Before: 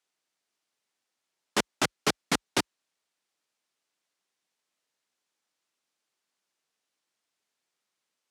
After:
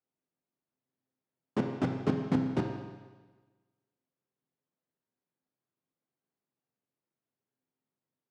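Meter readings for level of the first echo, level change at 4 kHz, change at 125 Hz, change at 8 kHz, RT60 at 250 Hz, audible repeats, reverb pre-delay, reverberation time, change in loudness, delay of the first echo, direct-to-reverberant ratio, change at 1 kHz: no echo audible, −20.0 dB, +8.0 dB, below −25 dB, 1.4 s, no echo audible, 7 ms, 1.3 s, −3.0 dB, no echo audible, 2.0 dB, −7.5 dB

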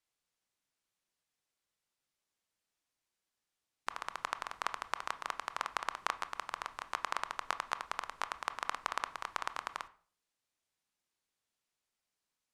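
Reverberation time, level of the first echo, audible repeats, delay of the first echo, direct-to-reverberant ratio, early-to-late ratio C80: 0.45 s, no echo audible, no echo audible, no echo audible, 12.0 dB, 21.0 dB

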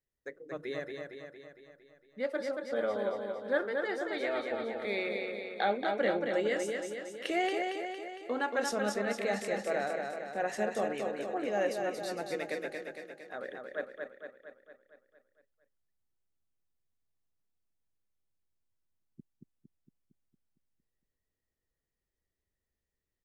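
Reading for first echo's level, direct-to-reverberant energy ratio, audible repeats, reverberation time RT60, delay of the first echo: −4.5 dB, no reverb audible, 7, no reverb audible, 229 ms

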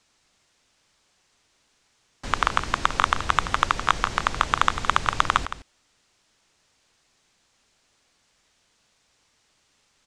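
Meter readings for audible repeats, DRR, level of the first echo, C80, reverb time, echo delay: 1, no reverb audible, −12.0 dB, no reverb audible, no reverb audible, 165 ms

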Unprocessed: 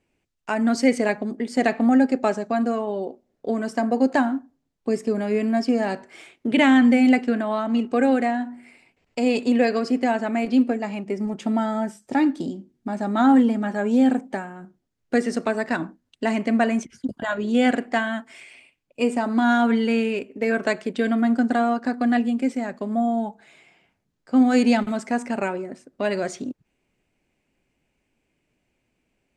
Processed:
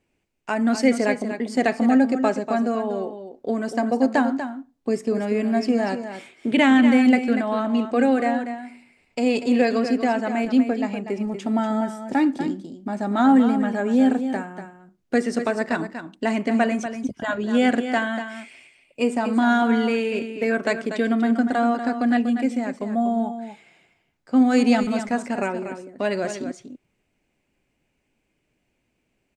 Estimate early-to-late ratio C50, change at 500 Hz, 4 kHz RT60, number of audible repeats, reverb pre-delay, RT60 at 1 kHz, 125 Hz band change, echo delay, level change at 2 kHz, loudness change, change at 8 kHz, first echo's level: no reverb audible, +0.5 dB, no reverb audible, 1, no reverb audible, no reverb audible, +0.5 dB, 241 ms, +0.5 dB, +0.5 dB, can't be measured, −9.5 dB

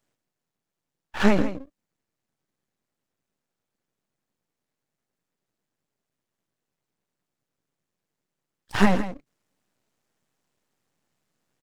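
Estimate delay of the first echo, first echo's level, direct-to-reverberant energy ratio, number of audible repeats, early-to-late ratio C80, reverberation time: 163 ms, −12.5 dB, no reverb audible, 1, no reverb audible, no reverb audible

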